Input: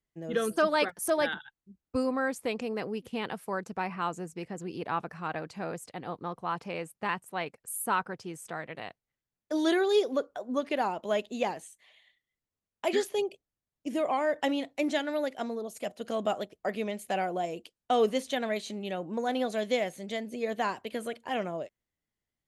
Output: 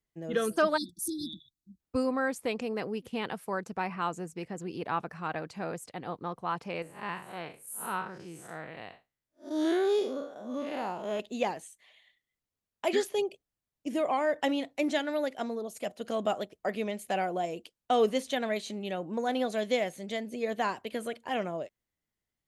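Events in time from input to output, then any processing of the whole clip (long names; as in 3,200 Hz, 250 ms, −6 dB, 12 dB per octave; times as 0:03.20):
0:00.77–0:01.79: time-frequency box erased 360–3,400 Hz
0:06.82–0:11.20: spectrum smeared in time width 144 ms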